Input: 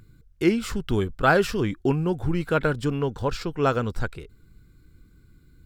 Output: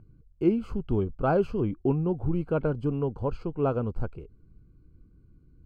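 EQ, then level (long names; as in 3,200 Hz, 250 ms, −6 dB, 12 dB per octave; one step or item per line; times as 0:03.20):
moving average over 24 samples
−2.0 dB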